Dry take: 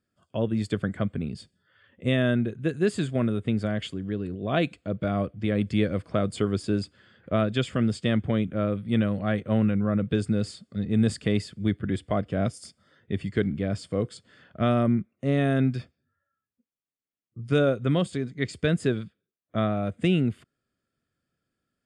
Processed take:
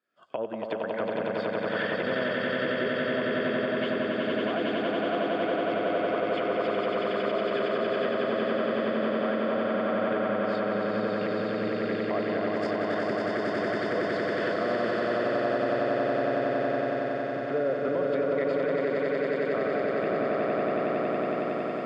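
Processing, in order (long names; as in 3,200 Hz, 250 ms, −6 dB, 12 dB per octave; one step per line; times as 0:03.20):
camcorder AGC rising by 50 dB per second
treble cut that deepens with the level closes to 740 Hz, closed at −17.5 dBFS
high-pass filter 510 Hz 12 dB per octave
echo that builds up and dies away 92 ms, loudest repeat 8, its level −3.5 dB
brickwall limiter −18.5 dBFS, peak gain reduction 9 dB
low-pass filter 3,000 Hz 12 dB per octave
feedback echo with a high-pass in the loop 410 ms, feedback 80%, high-pass 840 Hz, level −9.5 dB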